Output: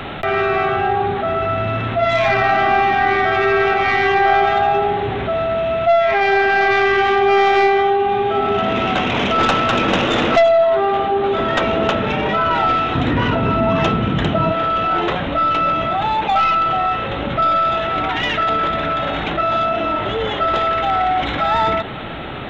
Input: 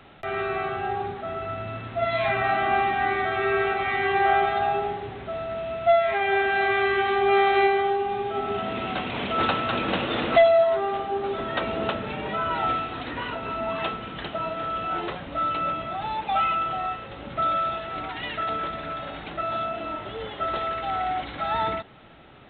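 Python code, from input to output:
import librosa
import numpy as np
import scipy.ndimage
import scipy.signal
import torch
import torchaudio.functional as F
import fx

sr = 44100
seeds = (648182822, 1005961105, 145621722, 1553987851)

y = fx.tracing_dist(x, sr, depth_ms=0.06)
y = fx.peak_eq(y, sr, hz=120.0, db=13.0, octaves=3.0, at=(12.95, 14.52))
y = fx.env_flatten(y, sr, amount_pct=50)
y = F.gain(torch.from_numpy(y), 3.0).numpy()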